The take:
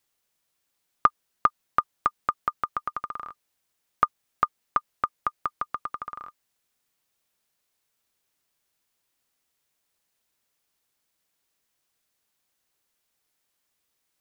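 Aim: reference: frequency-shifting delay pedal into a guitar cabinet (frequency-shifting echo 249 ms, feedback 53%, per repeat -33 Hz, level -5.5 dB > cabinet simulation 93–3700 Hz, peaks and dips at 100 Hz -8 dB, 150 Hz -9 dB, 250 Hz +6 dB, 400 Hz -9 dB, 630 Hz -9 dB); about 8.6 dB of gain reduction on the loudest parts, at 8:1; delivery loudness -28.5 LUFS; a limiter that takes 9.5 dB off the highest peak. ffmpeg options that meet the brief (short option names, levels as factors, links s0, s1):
-filter_complex "[0:a]acompressor=threshold=0.0562:ratio=8,alimiter=limit=0.158:level=0:latency=1,asplit=8[s0][s1][s2][s3][s4][s5][s6][s7];[s1]adelay=249,afreqshift=-33,volume=0.531[s8];[s2]adelay=498,afreqshift=-66,volume=0.282[s9];[s3]adelay=747,afreqshift=-99,volume=0.15[s10];[s4]adelay=996,afreqshift=-132,volume=0.0794[s11];[s5]adelay=1245,afreqshift=-165,volume=0.0417[s12];[s6]adelay=1494,afreqshift=-198,volume=0.0221[s13];[s7]adelay=1743,afreqshift=-231,volume=0.0117[s14];[s0][s8][s9][s10][s11][s12][s13][s14]amix=inputs=8:normalize=0,highpass=93,equalizer=f=100:t=q:w=4:g=-8,equalizer=f=150:t=q:w=4:g=-9,equalizer=f=250:t=q:w=4:g=6,equalizer=f=400:t=q:w=4:g=-9,equalizer=f=630:t=q:w=4:g=-9,lowpass=f=3700:w=0.5412,lowpass=f=3700:w=1.3066,volume=3.35"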